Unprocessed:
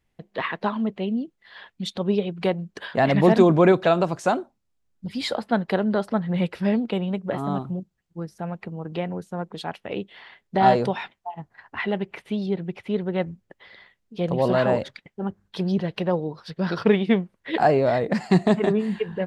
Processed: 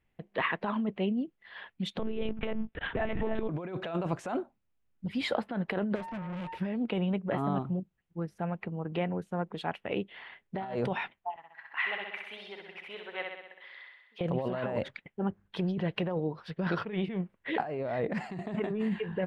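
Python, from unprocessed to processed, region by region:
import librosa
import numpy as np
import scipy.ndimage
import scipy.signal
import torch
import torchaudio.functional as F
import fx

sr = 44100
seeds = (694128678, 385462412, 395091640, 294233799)

y = fx.chain(x, sr, fx.law_mismatch(coded='A'),
    fx.over_compress(threshold_db=-23.0, ratio=-1.0),
    fx.lpc_monotone(seeds[0], pitch_hz=220.0, order=10), at=(1.99, 3.49))
y = fx.peak_eq(y, sr, hz=1300.0, db=-14.0, octaves=0.81, at=(5.94, 6.56), fade=0.02)
y = fx.dmg_tone(y, sr, hz=910.0, level_db=-34.0, at=(5.94, 6.56), fade=0.02)
y = fx.tube_stage(y, sr, drive_db=33.0, bias=0.4, at=(5.94, 6.56), fade=0.02)
y = fx.chain(y, sr, fx.highpass(hz=1100.0, slope=12),
    fx.room_flutter(wall_m=11.0, rt60_s=0.95), at=(11.36, 14.21))
y = fx.high_shelf_res(y, sr, hz=3600.0, db=-8.0, q=1.5)
y = fx.over_compress(y, sr, threshold_db=-25.0, ratio=-1.0)
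y = F.gain(torch.from_numpy(y), -6.0).numpy()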